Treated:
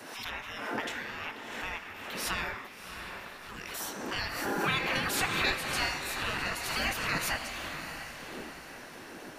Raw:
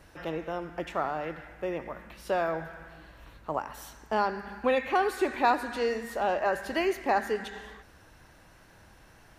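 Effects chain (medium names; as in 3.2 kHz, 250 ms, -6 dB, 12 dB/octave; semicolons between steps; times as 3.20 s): wind noise 83 Hz -37 dBFS; spectral gate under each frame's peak -20 dB weak; on a send: echo that smears into a reverb 670 ms, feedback 43%, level -7.5 dB; on the sum: swell ahead of each attack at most 39 dB/s; trim +8.5 dB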